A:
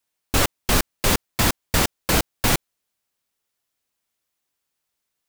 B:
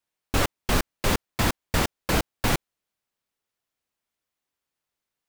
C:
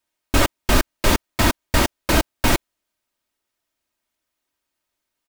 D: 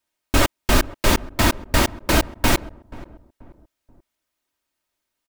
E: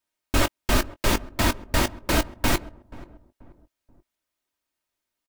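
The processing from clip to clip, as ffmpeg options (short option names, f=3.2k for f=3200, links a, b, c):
-af "highshelf=f=4k:g=-7,volume=-2.5dB"
-af "aecho=1:1:3.2:0.46,volume=5dB"
-filter_complex "[0:a]asplit=2[a][b];[b]adelay=482,lowpass=f=870:p=1,volume=-18dB,asplit=2[c][d];[d]adelay=482,lowpass=f=870:p=1,volume=0.4,asplit=2[e][f];[f]adelay=482,lowpass=f=870:p=1,volume=0.4[g];[a][c][e][g]amix=inputs=4:normalize=0"
-filter_complex "[0:a]asplit=2[a][b];[b]adelay=20,volume=-13dB[c];[a][c]amix=inputs=2:normalize=0,volume=-4.5dB"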